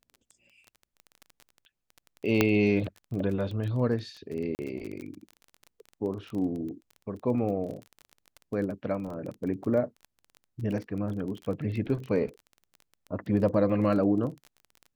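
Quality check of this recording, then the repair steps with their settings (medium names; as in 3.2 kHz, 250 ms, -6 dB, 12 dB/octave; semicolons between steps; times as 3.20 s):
crackle 22 per s -35 dBFS
2.41 s: pop -7 dBFS
4.55–4.59 s: dropout 39 ms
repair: de-click; interpolate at 4.55 s, 39 ms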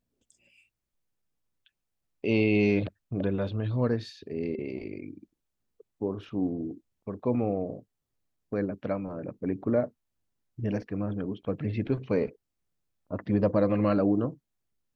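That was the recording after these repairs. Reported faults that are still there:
nothing left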